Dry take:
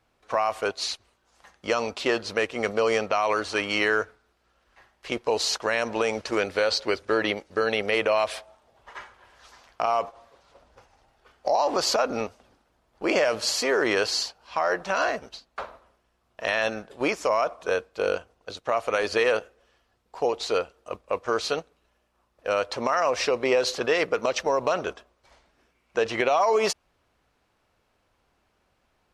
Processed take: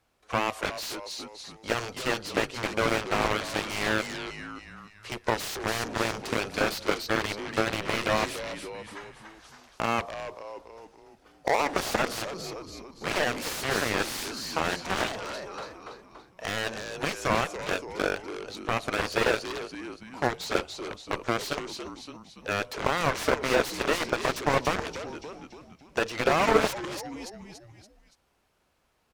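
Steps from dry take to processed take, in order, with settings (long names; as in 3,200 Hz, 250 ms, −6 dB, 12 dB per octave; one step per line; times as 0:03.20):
high-shelf EQ 6,400 Hz +8 dB
on a send: echo with shifted repeats 285 ms, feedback 44%, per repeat −80 Hz, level −6.5 dB
on the sum: harmonic generator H 7 −13 dB, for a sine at −7.5 dBFS
slew-rate limiting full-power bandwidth 120 Hz
level +2 dB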